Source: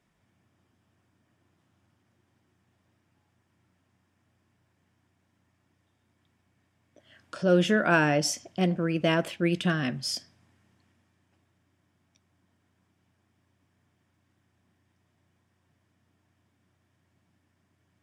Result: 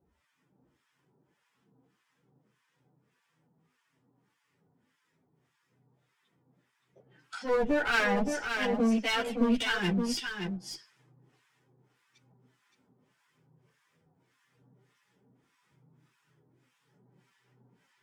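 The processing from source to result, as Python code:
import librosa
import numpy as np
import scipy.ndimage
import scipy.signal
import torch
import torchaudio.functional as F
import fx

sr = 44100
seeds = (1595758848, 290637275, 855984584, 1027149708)

p1 = fx.high_shelf(x, sr, hz=4400.0, db=-2.5)
p2 = fx.rider(p1, sr, range_db=10, speed_s=0.5)
p3 = p1 + F.gain(torch.from_numpy(p2), -2.0).numpy()
p4 = fx.harmonic_tremolo(p3, sr, hz=1.7, depth_pct=100, crossover_hz=940.0)
p5 = fx.pitch_keep_formants(p4, sr, semitones=5.5)
p6 = fx.clip_asym(p5, sr, top_db=-29.5, bottom_db=-17.0)
p7 = fx.chorus_voices(p6, sr, voices=4, hz=0.21, base_ms=13, depth_ms=2.6, mix_pct=55)
p8 = p7 + fx.echo_single(p7, sr, ms=569, db=-6.0, dry=0)
y = F.gain(torch.from_numpy(p8), 3.0).numpy()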